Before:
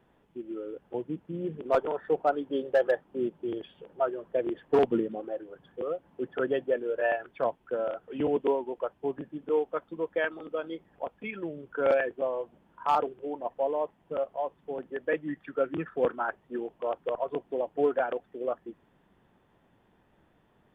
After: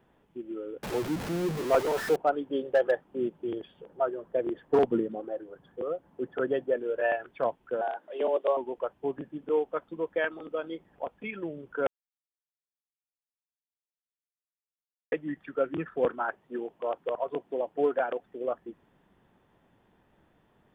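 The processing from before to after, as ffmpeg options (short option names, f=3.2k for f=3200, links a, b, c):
-filter_complex "[0:a]asettb=1/sr,asplit=3[a][b][c];[a]atrim=end=0.834[d];[b]atrim=start=0.83:end=2.16,asetpts=PTS-STARTPTS,afade=t=in:d=0.004:c=qsin,afade=t=out:st=1.326:d=0.004:c=qsin,aeval=exprs='val(0)+0.5*0.0316*sgn(val(0))':c=same[e];[c]atrim=start=2.156[f];[d][e]acrossfade=d=0.004:c1=hsin:c2=qsin[g];[g][f]acrossfade=d=0.004:c1=qsin:c2=hsin,asettb=1/sr,asplit=3[h][i][j];[h]atrim=end=3.554[k];[i]atrim=start=3.55:end=6.8,asetpts=PTS-STARTPTS,afade=t=in:d=0.004:c=qsin,afade=t=out:st=3.246:d=0.004:c=qsin,equalizer=f=2.7k:t=o:w=0.95:g=-4.5[l];[j]atrim=start=6.796[m];[k][l]acrossfade=d=0.004:c1=hsin:c2=qsin[n];[n][m]acrossfade=d=0.004:c1=qsin:c2=hsin,asettb=1/sr,asplit=3[o][p][q];[o]atrim=end=7.814[r];[p]atrim=start=7.81:end=8.57,asetpts=PTS-STARTPTS,afade=t=in:d=0.004:c=qsin,afade=t=out:st=0.756:d=0.004:c=qsin,afreqshift=140[s];[q]atrim=start=8.566[t];[r][s]acrossfade=d=0.004:c1=hsin:c2=qsin[u];[u][t]acrossfade=d=0.004:c1=qsin:c2=hsin,asettb=1/sr,asplit=3[v][w][x];[v]atrim=end=16.214[y];[w]atrim=start=16.21:end=18.24,asetpts=PTS-STARTPTS,afade=t=in:d=0.004:c=qsin,afade=t=out:st=2.026:d=0.004:c=qsin,highpass=f=140:p=1[z];[x]atrim=start=18.236[aa];[y][z]acrossfade=d=0.004:c1=hsin:c2=qsin[ab];[ab][aa]acrossfade=d=0.004:c1=qsin:c2=hsin,asplit=3[ac][ad][ae];[ac]atrim=end=11.87,asetpts=PTS-STARTPTS,afade=t=out:st=11.866:d=0.004:c=hsin[af];[ad]atrim=start=11.87:end=15.12,asetpts=PTS-STARTPTS,volume=0[ag];[ae]atrim=start=15.12,asetpts=PTS-STARTPTS,afade=t=in:d=0.004:c=hsin[ah];[af][ag][ah]concat=n=3:v=0:a=1"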